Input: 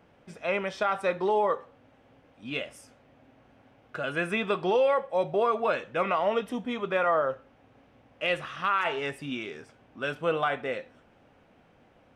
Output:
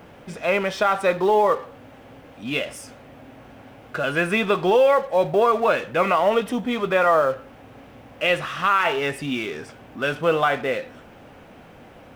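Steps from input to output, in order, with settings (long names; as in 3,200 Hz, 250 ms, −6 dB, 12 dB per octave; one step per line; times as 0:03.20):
mu-law and A-law mismatch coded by mu
level +6.5 dB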